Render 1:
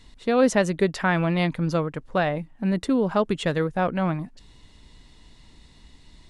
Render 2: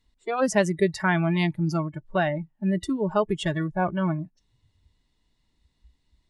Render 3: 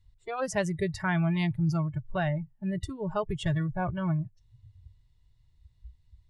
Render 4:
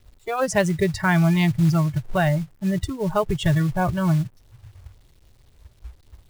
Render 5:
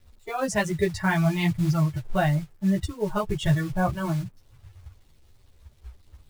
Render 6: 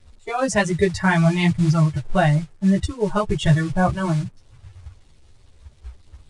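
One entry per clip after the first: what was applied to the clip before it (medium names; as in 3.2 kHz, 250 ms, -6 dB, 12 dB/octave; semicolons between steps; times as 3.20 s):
spectral noise reduction 20 dB
resonant low shelf 160 Hz +13 dB, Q 3; trim -6 dB
companded quantiser 6-bit; trim +8.5 dB
three-phase chorus
resampled via 22.05 kHz; trim +5.5 dB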